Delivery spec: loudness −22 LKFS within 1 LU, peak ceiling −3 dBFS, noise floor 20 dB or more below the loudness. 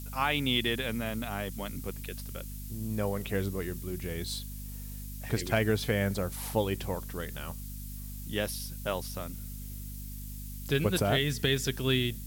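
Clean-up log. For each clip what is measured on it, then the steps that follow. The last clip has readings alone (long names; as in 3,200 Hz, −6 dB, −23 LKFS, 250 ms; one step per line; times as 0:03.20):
mains hum 50 Hz; hum harmonics up to 250 Hz; level of the hum −38 dBFS; background noise floor −41 dBFS; target noise floor −53 dBFS; integrated loudness −32.5 LKFS; sample peak −14.5 dBFS; target loudness −22.0 LKFS
→ hum removal 50 Hz, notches 5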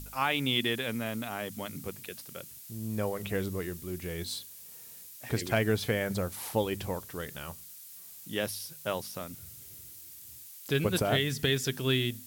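mains hum none found; background noise floor −49 dBFS; target noise floor −52 dBFS
→ broadband denoise 6 dB, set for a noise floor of −49 dBFS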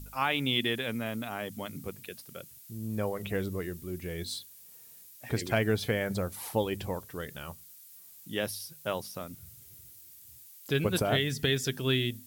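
background noise floor −53 dBFS; integrated loudness −32.0 LKFS; sample peak −15.0 dBFS; target loudness −22.0 LKFS
→ level +10 dB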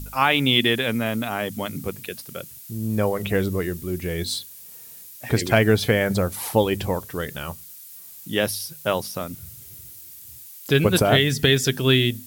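integrated loudness −22.0 LKFS; sample peak −5.0 dBFS; background noise floor −43 dBFS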